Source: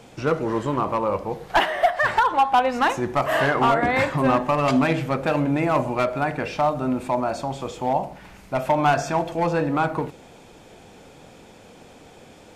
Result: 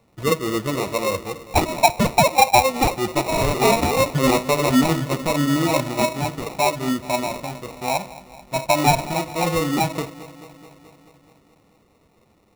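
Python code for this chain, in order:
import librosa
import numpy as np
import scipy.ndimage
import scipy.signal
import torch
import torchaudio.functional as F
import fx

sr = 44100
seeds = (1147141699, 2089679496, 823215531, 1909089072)

y = fx.bin_expand(x, sr, power=1.5)
y = fx.echo_wet_lowpass(y, sr, ms=215, feedback_pct=68, hz=870.0, wet_db=-16.5)
y = fx.sample_hold(y, sr, seeds[0], rate_hz=1600.0, jitter_pct=0)
y = y * librosa.db_to_amplitude(4.5)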